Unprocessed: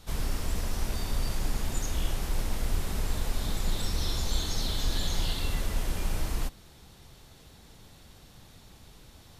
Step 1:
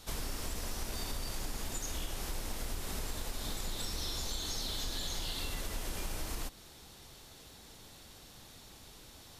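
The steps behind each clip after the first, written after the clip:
drawn EQ curve 170 Hz 0 dB, 280 Hz +5 dB, 2,200 Hz +6 dB, 5,500 Hz +9 dB
downward compressor, threshold −28 dBFS, peak gain reduction 9 dB
level −5.5 dB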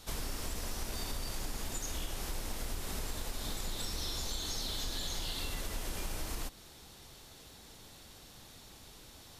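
no processing that can be heard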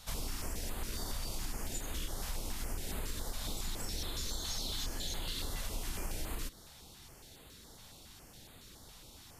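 notch on a step sequencer 7.2 Hz 350–5,600 Hz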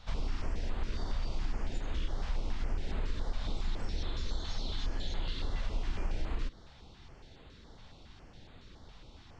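Gaussian smoothing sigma 2 samples
low-shelf EQ 66 Hz +6.5 dB
level +1.5 dB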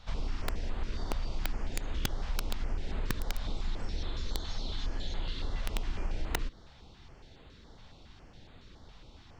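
wrap-around overflow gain 23 dB

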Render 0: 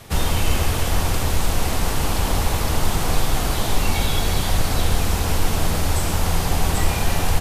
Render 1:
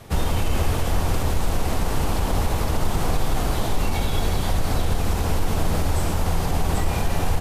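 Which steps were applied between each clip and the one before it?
low-shelf EQ 450 Hz −4 dB
brickwall limiter −13.5 dBFS, peak gain reduction 5 dB
tilt shelving filter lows +5 dB, about 1,100 Hz
level −1 dB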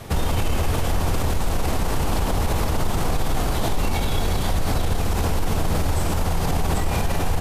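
brickwall limiter −19 dBFS, peak gain reduction 8 dB
level +6 dB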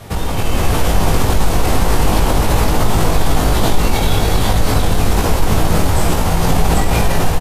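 automatic gain control gain up to 6 dB
double-tracking delay 19 ms −3 dB
level +1 dB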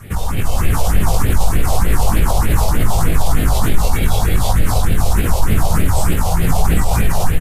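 all-pass phaser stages 4, 3.3 Hz, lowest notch 270–1,000 Hz

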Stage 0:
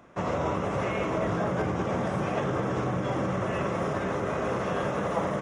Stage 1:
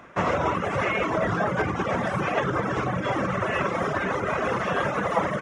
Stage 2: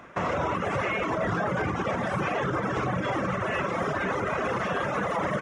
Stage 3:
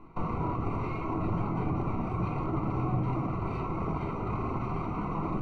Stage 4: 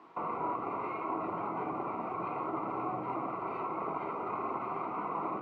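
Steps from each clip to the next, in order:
reverb reduction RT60 1.5 s; parametric band 1,800 Hz +7.5 dB 1.9 octaves; level +4 dB
brickwall limiter −19 dBFS, peak gain reduction 8.5 dB
lower of the sound and its delayed copy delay 0.87 ms; moving average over 26 samples; on a send at −3 dB: convolution reverb RT60 0.50 s, pre-delay 3 ms; on the sum: level −1 dB
bit-depth reduction 10 bits, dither none; band-pass filter 460–2,000 Hz; level +2 dB

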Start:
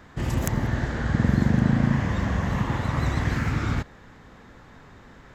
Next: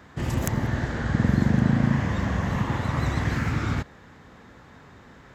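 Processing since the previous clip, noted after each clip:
high-pass filter 57 Hz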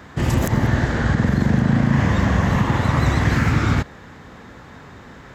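brickwall limiter −15 dBFS, peak gain reduction 8 dB
level +8 dB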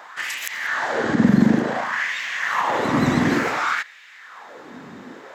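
auto-filter high-pass sine 0.56 Hz 210–2,400 Hz

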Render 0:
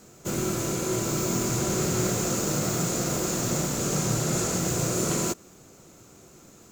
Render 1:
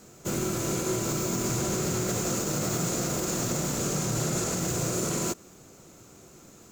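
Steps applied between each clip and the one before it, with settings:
brickwall limiter −19 dBFS, peak gain reduction 5.5 dB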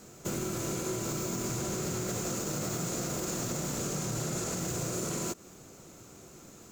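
downward compressor 3 to 1, threshold −32 dBFS, peak gain reduction 6 dB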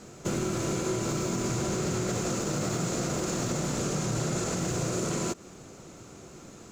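high-frequency loss of the air 51 metres
level +5 dB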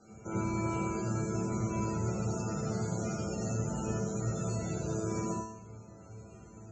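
tuned comb filter 110 Hz, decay 0.69 s, harmonics all, mix 90%
spectral peaks only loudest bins 64
convolution reverb RT60 0.10 s, pre-delay 82 ms, DRR 3 dB

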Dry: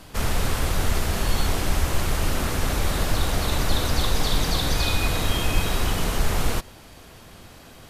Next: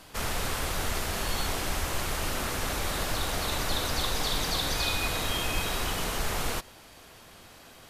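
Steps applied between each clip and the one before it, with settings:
low-shelf EQ 320 Hz −8.5 dB
level −2.5 dB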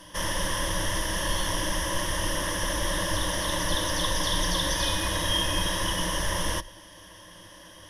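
EQ curve with evenly spaced ripples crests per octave 1.2, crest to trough 16 dB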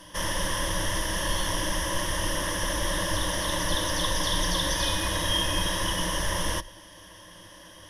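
no processing that can be heard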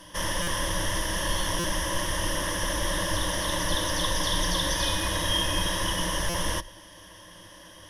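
buffer that repeats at 0:00.42/0:01.59/0:06.29, samples 256, times 8

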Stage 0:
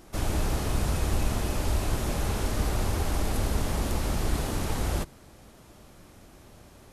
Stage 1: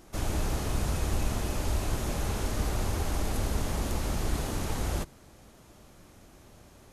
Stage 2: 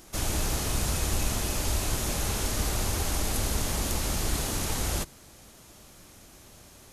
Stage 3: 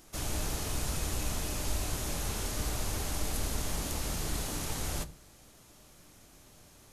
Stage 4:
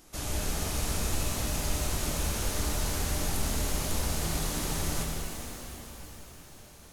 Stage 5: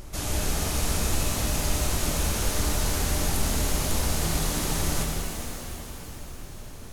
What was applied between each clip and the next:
parametric band 6,500 Hz +3 dB 0.22 octaves; level −2.5 dB
high-shelf EQ 2,400 Hz +10 dB
convolution reverb RT60 0.35 s, pre-delay 7 ms, DRR 12 dB; level −6 dB
reverb with rising layers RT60 4 s, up +7 semitones, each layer −8 dB, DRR −0.5 dB
background noise brown −44 dBFS; level +4.5 dB

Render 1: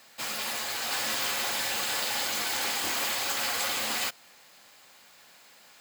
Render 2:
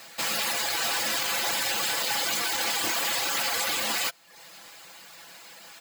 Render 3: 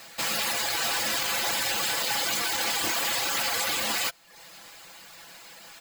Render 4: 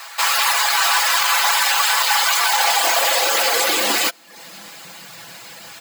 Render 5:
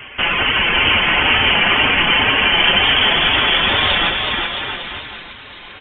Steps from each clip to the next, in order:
reverb reduction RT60 0.55 s; comb filter 6 ms, depth 45%; brickwall limiter −26.5 dBFS, peak gain reduction 10 dB; level +8.5 dB
low-shelf EQ 74 Hz +11 dB
high-pass filter sweep 1,000 Hz → 88 Hz, 0:02.33–0:05.69; level +9 dB
bouncing-ball delay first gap 370 ms, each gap 0.8×, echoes 5; tape wow and flutter 22 cents; voice inversion scrambler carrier 3,900 Hz; level +2.5 dB

